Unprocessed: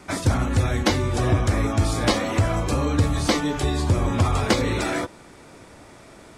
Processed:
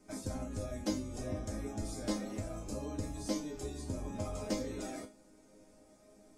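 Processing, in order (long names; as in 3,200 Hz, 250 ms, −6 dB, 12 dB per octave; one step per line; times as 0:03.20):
flat-topped bell 1,900 Hz −10.5 dB 2.5 octaves
resonators tuned to a chord G#3 major, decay 0.26 s
level +3 dB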